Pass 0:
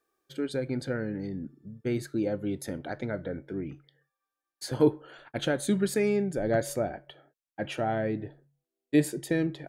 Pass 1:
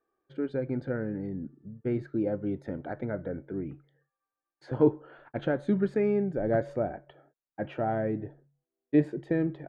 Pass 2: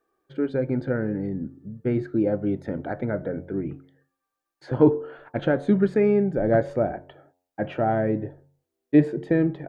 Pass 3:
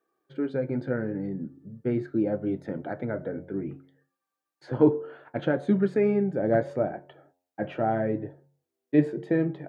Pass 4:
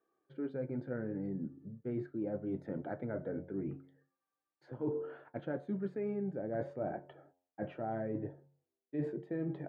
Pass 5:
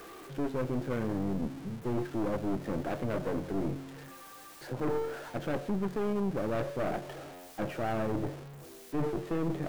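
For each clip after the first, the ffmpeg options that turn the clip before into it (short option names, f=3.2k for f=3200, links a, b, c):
-af "lowpass=1.5k"
-af "bandreject=f=89.84:t=h:w=4,bandreject=f=179.68:t=h:w=4,bandreject=f=269.52:t=h:w=4,bandreject=f=359.36:t=h:w=4,bandreject=f=449.2:t=h:w=4,bandreject=f=539.04:t=h:w=4,bandreject=f=628.88:t=h:w=4,bandreject=f=718.72:t=h:w=4,bandreject=f=808.56:t=h:w=4,bandreject=f=898.4:t=h:w=4,bandreject=f=988.24:t=h:w=4,bandreject=f=1.07808k:t=h:w=4,bandreject=f=1.16792k:t=h:w=4,volume=6.5dB"
-af "highpass=110,flanger=delay=5.3:depth=4.5:regen=-63:speed=0.71:shape=triangular,volume=1dB"
-af "highshelf=f=3k:g=-11.5,areverse,acompressor=threshold=-32dB:ratio=5,areverse,volume=-3dB"
-af "aeval=exprs='val(0)+0.5*0.00398*sgn(val(0))':c=same,aeval=exprs='0.0631*(cos(1*acos(clip(val(0)/0.0631,-1,1)))-cos(1*PI/2))+0.0126*(cos(4*acos(clip(val(0)/0.0631,-1,1)))-cos(4*PI/2))+0.0141*(cos(5*acos(clip(val(0)/0.0631,-1,1)))-cos(5*PI/2))+0.00562*(cos(8*acos(clip(val(0)/0.0631,-1,1)))-cos(8*PI/2))':c=same"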